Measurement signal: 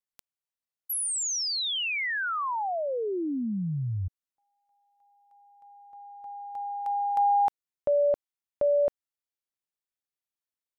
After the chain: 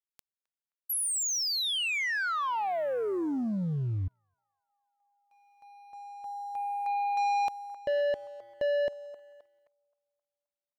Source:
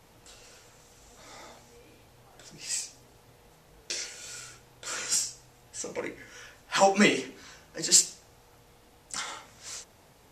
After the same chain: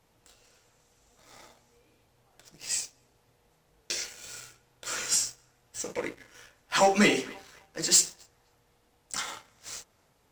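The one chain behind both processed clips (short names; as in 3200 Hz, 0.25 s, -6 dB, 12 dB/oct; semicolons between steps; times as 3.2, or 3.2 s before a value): narrowing echo 0.263 s, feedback 61%, band-pass 1200 Hz, level -20 dB; sample leveller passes 2; gain -6 dB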